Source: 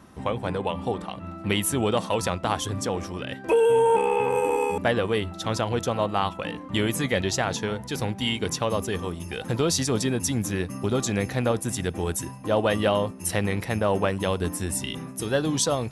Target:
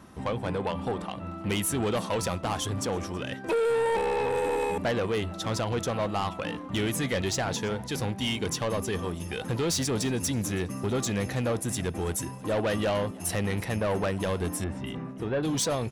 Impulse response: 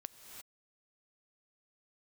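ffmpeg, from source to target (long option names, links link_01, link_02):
-filter_complex "[0:a]asoftclip=type=tanh:threshold=-22.5dB,asettb=1/sr,asplit=3[link_01][link_02][link_03];[link_01]atrim=end=14.644[link_04];[link_02]atrim=start=14.64:end=15.43,asetpts=PTS-STARTPTS,afade=type=in:duration=0.004:curve=qsin,afade=type=out:start_time=0.786:duration=0.004:curve=qsin,lowpass=1900[link_05];[link_03]atrim=start=15.426[link_06];[link_04][link_05]acrossfade=duration=0.004:curve1=hsin:curve2=qsin[link_07];[link_07][link_06]acrossfade=duration=0.004:curve1=qsin:curve2=hsin,asplit=4[link_08][link_09][link_10][link_11];[link_09]adelay=326,afreqshift=96,volume=-23dB[link_12];[link_10]adelay=652,afreqshift=192,volume=-30.3dB[link_13];[link_11]adelay=978,afreqshift=288,volume=-37.7dB[link_14];[link_08][link_12][link_13][link_14]amix=inputs=4:normalize=0"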